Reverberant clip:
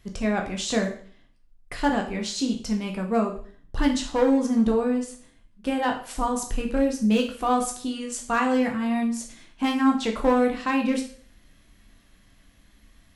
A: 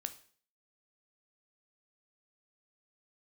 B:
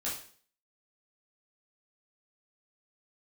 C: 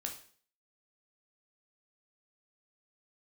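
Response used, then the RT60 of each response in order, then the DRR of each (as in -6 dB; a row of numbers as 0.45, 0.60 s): C; 0.50, 0.50, 0.50 s; 8.5, -7.5, 1.5 dB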